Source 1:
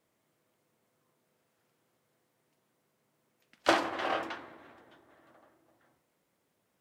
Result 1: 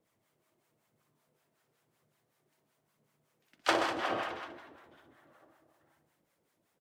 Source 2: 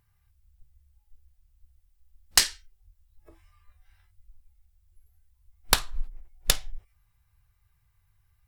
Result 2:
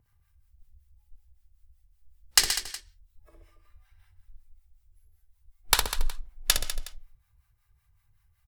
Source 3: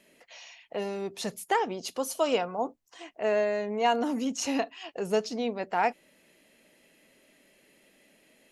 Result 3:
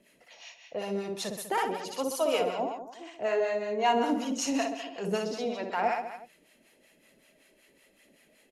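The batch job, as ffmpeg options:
-filter_complex "[0:a]aphaser=in_gain=1:out_gain=1:delay=3.4:decay=0.32:speed=0.99:type=triangular,aecho=1:1:60|126|198.6|278.5|366.3:0.631|0.398|0.251|0.158|0.1,acrossover=split=690[a][b];[a]aeval=exprs='val(0)*(1-0.7/2+0.7/2*cos(2*PI*5.3*n/s))':c=same[c];[b]aeval=exprs='val(0)*(1-0.7/2-0.7/2*cos(2*PI*5.3*n/s))':c=same[d];[c][d]amix=inputs=2:normalize=0"

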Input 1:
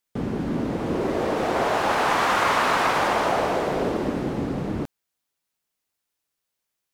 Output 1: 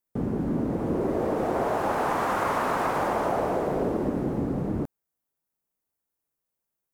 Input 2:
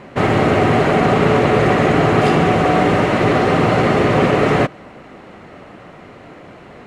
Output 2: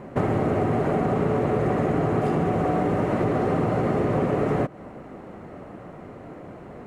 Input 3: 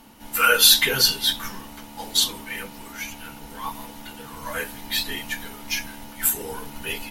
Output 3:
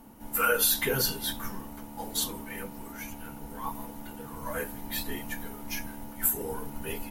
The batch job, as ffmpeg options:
-af "equalizer=f=3.6k:t=o:w=2.5:g=-14,acompressor=threshold=-20dB:ratio=5"

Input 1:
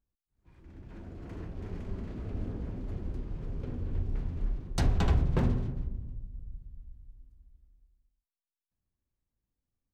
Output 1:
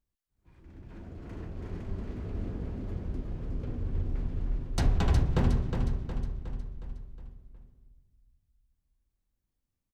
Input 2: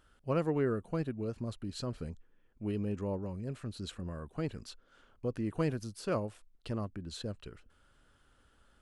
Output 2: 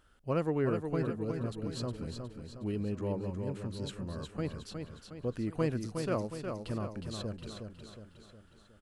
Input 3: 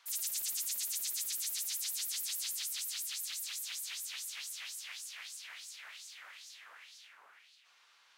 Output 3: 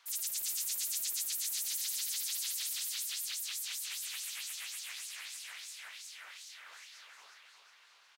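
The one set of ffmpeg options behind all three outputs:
-af "aecho=1:1:363|726|1089|1452|1815|2178:0.501|0.251|0.125|0.0626|0.0313|0.0157"

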